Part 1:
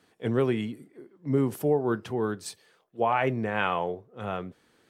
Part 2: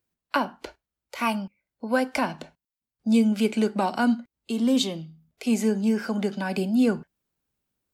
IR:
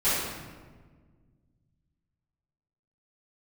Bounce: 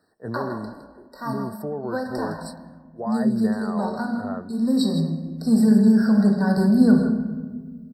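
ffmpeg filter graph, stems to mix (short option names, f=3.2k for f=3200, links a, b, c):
-filter_complex "[0:a]alimiter=limit=-20dB:level=0:latency=1:release=19,volume=-2.5dB[a];[1:a]asubboost=boost=5.5:cutoff=160,afade=t=in:st=4.47:d=0.47:silence=0.421697,asplit=3[b][c][d];[c]volume=-14.5dB[e];[d]volume=-8.5dB[f];[2:a]atrim=start_sample=2205[g];[e][g]afir=irnorm=-1:irlink=0[h];[f]aecho=0:1:161:1[i];[a][b][h][i]amix=inputs=4:normalize=0,equalizer=f=620:w=7.3:g=6,afftfilt=real='re*eq(mod(floor(b*sr/1024/1900),2),0)':imag='im*eq(mod(floor(b*sr/1024/1900),2),0)':win_size=1024:overlap=0.75"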